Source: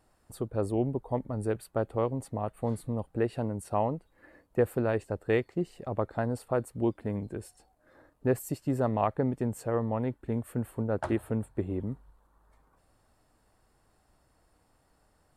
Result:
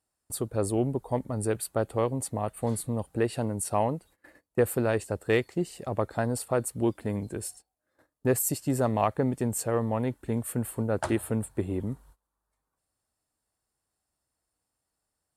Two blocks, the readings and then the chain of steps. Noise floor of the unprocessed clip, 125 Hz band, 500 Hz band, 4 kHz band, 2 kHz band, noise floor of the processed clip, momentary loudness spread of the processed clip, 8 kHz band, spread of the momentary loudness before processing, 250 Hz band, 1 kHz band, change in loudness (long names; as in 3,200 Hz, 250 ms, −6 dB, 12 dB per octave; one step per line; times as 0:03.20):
−69 dBFS, +2.0 dB, +2.0 dB, can't be measured, +4.0 dB, −84 dBFS, 7 LU, +15.0 dB, 6 LU, +2.0 dB, +2.5 dB, +2.5 dB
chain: high-pass filter 42 Hz
noise gate −55 dBFS, range −21 dB
parametric band 9,700 Hz +13.5 dB 2.4 octaves
in parallel at −11 dB: soft clipping −22.5 dBFS, distortion −13 dB